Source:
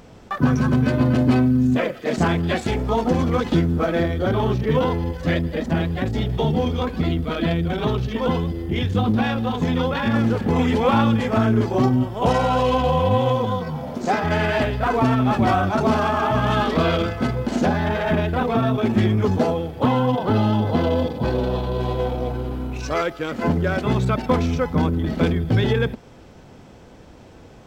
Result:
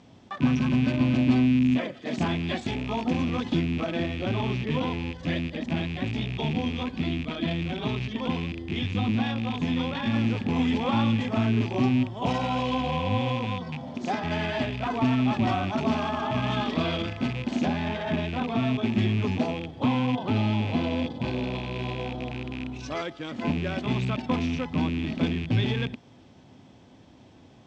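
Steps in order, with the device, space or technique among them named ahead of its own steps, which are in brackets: car door speaker with a rattle (rattle on loud lows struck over -25 dBFS, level -19 dBFS; cabinet simulation 87–7300 Hz, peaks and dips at 110 Hz +4 dB, 260 Hz +5 dB, 470 Hz -7 dB, 1.4 kHz -6 dB, 3.4 kHz +5 dB); trim -7.5 dB

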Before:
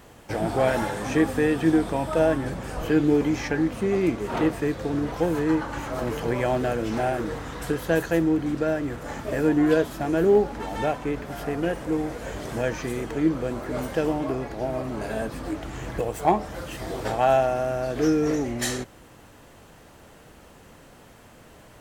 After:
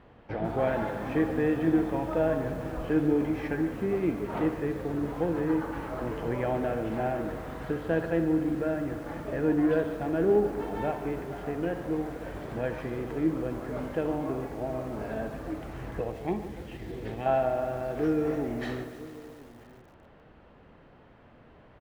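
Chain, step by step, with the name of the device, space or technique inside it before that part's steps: 16.12–17.26 s: high-order bell 900 Hz -12 dB; tape echo 66 ms, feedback 66%, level -11 dB, low-pass 3.4 kHz; shout across a valley (distance through air 370 m; echo from a far wall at 170 m, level -19 dB); bit-crushed delay 146 ms, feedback 80%, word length 7-bit, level -14 dB; trim -4.5 dB

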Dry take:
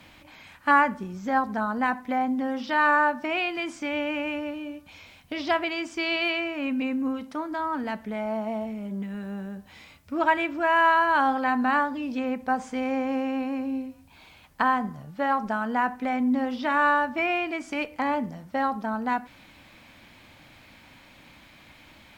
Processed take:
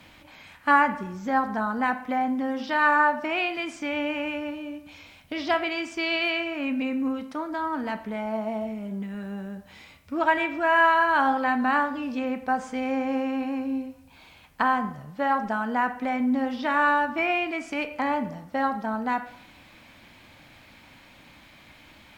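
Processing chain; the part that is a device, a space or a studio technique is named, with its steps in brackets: filtered reverb send (on a send: high-pass 400 Hz + low-pass 4.1 kHz + reverberation RT60 0.80 s, pre-delay 16 ms, DRR 9.5 dB)

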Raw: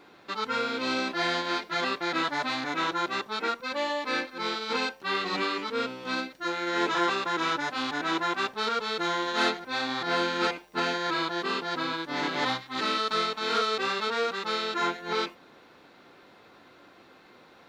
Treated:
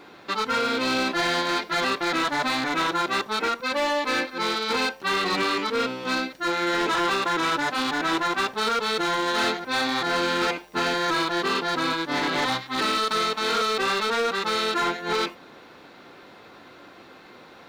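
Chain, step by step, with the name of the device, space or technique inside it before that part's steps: limiter into clipper (peak limiter -21 dBFS, peak gain reduction 5 dB; hard clipper -26.5 dBFS, distortion -15 dB); trim +7 dB

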